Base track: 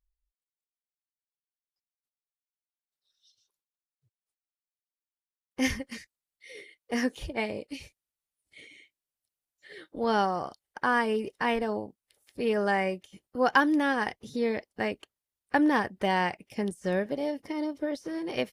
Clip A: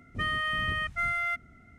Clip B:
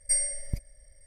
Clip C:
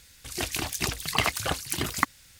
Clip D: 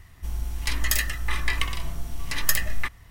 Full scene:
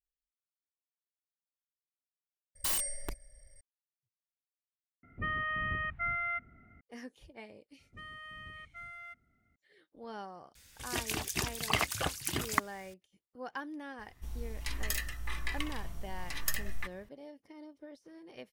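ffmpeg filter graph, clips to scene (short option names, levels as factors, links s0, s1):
-filter_complex "[1:a]asplit=2[s0][s1];[0:a]volume=0.119[s2];[2:a]aeval=exprs='(mod(15.8*val(0)+1,2)-1)/15.8':c=same[s3];[s0]lowpass=f=2400:w=0.5412,lowpass=f=2400:w=1.3066[s4];[3:a]equalizer=f=4200:t=o:w=0.23:g=-3.5[s5];[s2]asplit=3[s6][s7][s8];[s6]atrim=end=2.554[s9];[s3]atrim=end=1.06,asetpts=PTS-STARTPTS,volume=0.75[s10];[s7]atrim=start=3.606:end=5.034[s11];[s4]atrim=end=1.78,asetpts=PTS-STARTPTS,volume=0.631[s12];[s8]atrim=start=6.806[s13];[s1]atrim=end=1.78,asetpts=PTS-STARTPTS,volume=0.126,afade=t=in:d=0.004:c=hsin,afade=t=out:st=1.776:d=0.004:c=hsin,adelay=343098S[s14];[s5]atrim=end=2.39,asetpts=PTS-STARTPTS,volume=0.562,afade=t=in:d=0.004:c=hsin,afade=t=out:st=2.386:d=0.004:c=hsin,adelay=10550[s15];[4:a]atrim=end=3.1,asetpts=PTS-STARTPTS,volume=0.282,afade=t=in:d=0.004:c=hsin,afade=t=out:st=3.096:d=0.004:c=hsin,adelay=13990[s16];[s9][s10]acrossfade=d=0.004:c1=hsin:c2=hsin[s17];[s17][s11]acrossfade=d=0.004:c1=hsin:c2=hsin[s18];[s18][s12]acrossfade=d=0.004:c1=hsin:c2=hsin[s19];[s19][s13]acrossfade=d=0.004:c1=hsin:c2=hsin[s20];[s20][s14][s15][s16]amix=inputs=4:normalize=0"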